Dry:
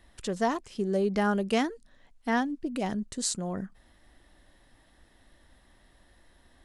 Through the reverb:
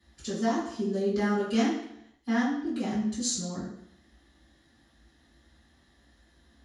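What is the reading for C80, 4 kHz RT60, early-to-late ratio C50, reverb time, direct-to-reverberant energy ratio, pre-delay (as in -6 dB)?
6.0 dB, 0.70 s, 2.5 dB, 0.70 s, -12.0 dB, 3 ms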